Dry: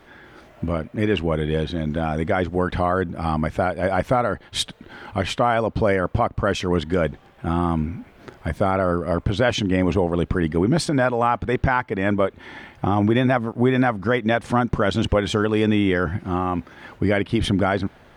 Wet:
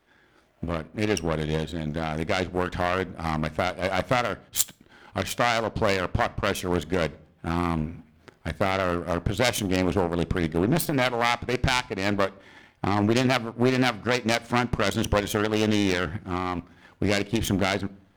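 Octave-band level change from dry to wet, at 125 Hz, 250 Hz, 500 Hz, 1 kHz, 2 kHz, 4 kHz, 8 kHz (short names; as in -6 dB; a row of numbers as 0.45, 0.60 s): -5.5, -5.0, -5.0, -4.0, -1.5, 0.0, +5.0 dB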